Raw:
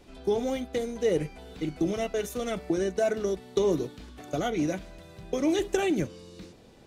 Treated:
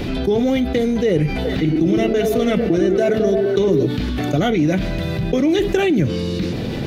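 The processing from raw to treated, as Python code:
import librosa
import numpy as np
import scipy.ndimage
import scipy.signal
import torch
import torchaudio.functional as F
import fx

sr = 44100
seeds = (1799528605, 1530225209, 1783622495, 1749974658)

y = fx.graphic_eq(x, sr, hz=(125, 250, 1000, 2000, 4000, 8000), db=(9, 4, -4, 3, 3, -11))
y = fx.echo_stepped(y, sr, ms=107, hz=310.0, octaves=0.7, feedback_pct=70, wet_db=-1.5, at=(1.44, 3.85), fade=0.02)
y = fx.env_flatten(y, sr, amount_pct=70)
y = y * 10.0 ** (3.5 / 20.0)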